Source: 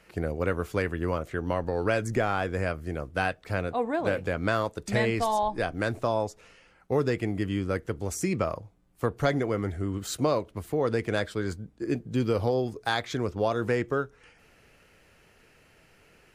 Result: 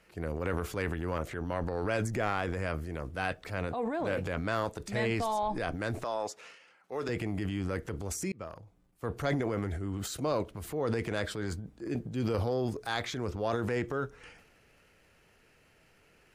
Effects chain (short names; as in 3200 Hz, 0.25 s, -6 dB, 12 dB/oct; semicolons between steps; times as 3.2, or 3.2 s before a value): 6.04–7.09 weighting filter A; 8.32–9.16 fade in; transient shaper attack -4 dB, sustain +9 dB; gain -5 dB